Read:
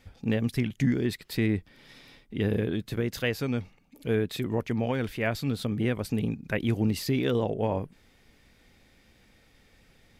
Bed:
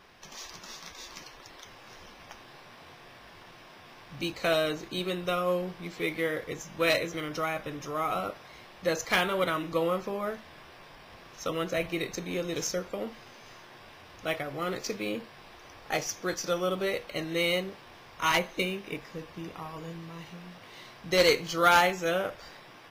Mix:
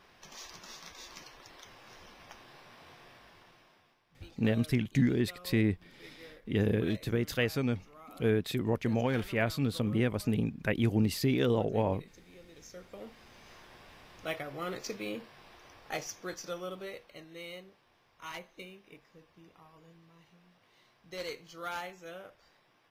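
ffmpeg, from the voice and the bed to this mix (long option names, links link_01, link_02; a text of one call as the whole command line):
ffmpeg -i stem1.wav -i stem2.wav -filter_complex "[0:a]adelay=4150,volume=-1.5dB[link_01];[1:a]volume=13.5dB,afade=type=out:start_time=3.02:duration=0.98:silence=0.11885,afade=type=in:start_time=12.62:duration=0.94:silence=0.133352,afade=type=out:start_time=15.56:duration=1.73:silence=0.237137[link_02];[link_01][link_02]amix=inputs=2:normalize=0" out.wav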